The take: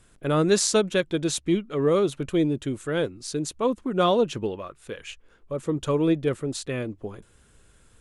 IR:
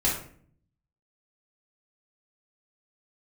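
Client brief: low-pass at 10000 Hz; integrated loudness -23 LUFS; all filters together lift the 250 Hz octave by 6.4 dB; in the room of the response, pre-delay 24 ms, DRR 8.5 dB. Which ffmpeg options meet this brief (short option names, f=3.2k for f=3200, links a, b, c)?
-filter_complex "[0:a]lowpass=10k,equalizer=f=250:t=o:g=9,asplit=2[a][b];[1:a]atrim=start_sample=2205,adelay=24[c];[b][c]afir=irnorm=-1:irlink=0,volume=-19dB[d];[a][d]amix=inputs=2:normalize=0,volume=-3dB"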